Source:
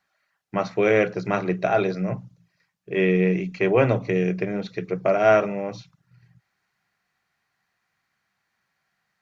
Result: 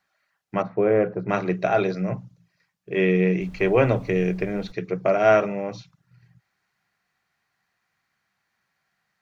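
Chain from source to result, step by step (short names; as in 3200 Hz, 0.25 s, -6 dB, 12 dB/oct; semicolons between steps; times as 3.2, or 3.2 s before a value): 0.62–1.29 LPF 1100 Hz 12 dB/oct; 3.4–4.71 added noise brown -42 dBFS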